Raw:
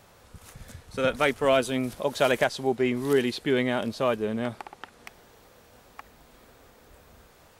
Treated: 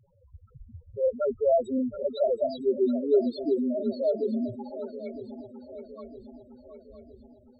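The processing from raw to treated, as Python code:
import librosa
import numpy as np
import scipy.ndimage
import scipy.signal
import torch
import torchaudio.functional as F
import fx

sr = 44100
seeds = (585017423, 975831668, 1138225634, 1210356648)

y = fx.spec_topn(x, sr, count=2)
y = fx.echo_swing(y, sr, ms=961, ratio=3, feedback_pct=50, wet_db=-13.0)
y = y * librosa.db_to_amplitude(3.0)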